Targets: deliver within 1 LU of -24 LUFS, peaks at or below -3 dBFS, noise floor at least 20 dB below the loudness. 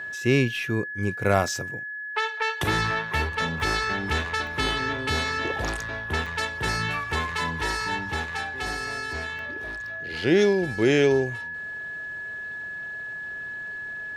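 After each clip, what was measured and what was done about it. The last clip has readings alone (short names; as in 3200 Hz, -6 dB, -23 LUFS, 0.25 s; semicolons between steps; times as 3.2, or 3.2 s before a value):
dropouts 5; longest dropout 1.1 ms; steady tone 1700 Hz; tone level -32 dBFS; loudness -26.5 LUFS; peak -6.0 dBFS; loudness target -24.0 LUFS
-> interpolate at 1.48/3.6/4.47/6.26/9.39, 1.1 ms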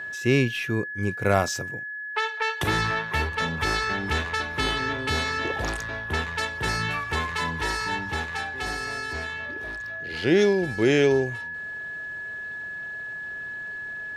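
dropouts 0; steady tone 1700 Hz; tone level -32 dBFS
-> notch 1700 Hz, Q 30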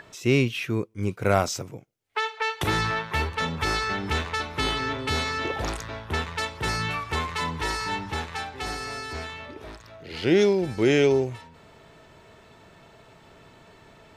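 steady tone none; loudness -26.0 LUFS; peak -6.5 dBFS; loudness target -24.0 LUFS
-> gain +2 dB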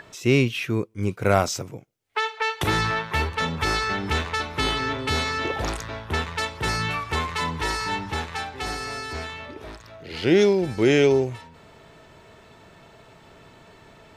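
loudness -24.0 LUFS; peak -4.5 dBFS; noise floor -51 dBFS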